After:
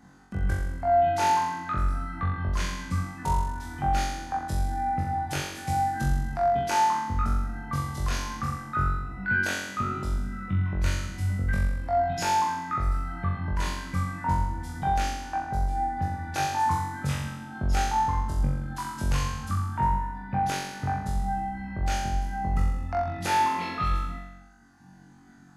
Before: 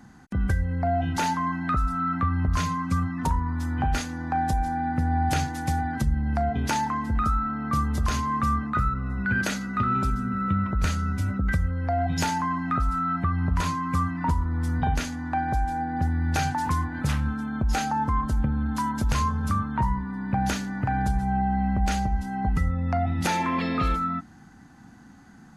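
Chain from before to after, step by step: reverb removal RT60 1.4 s; flutter echo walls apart 3.7 m, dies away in 1 s; gain -5.5 dB

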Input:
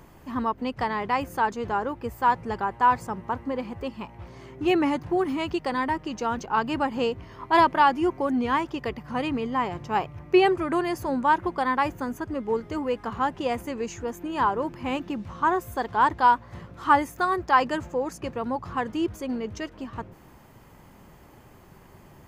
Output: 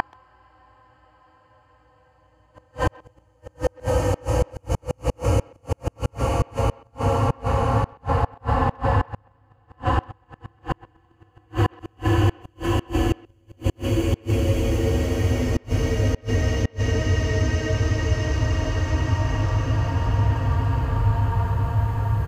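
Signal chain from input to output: bell 210 Hz -13.5 dB 0.27 oct; Paulstretch 8.6×, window 1.00 s, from 17.58; resonant low shelf 160 Hz +13.5 dB, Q 1.5; flipped gate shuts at -18 dBFS, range -41 dB; speakerphone echo 0.13 s, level -22 dB; gain +9 dB

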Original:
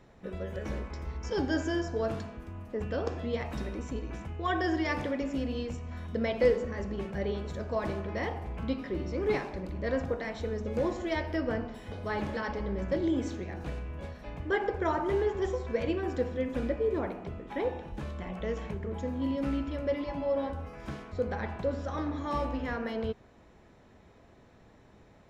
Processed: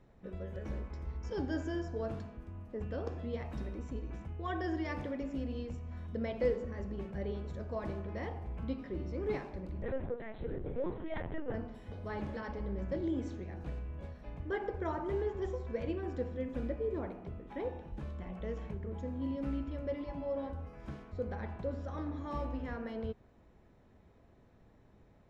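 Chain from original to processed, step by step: tilt -1.5 dB/oct; 9.82–11.54 LPC vocoder at 8 kHz pitch kept; gain -8.5 dB

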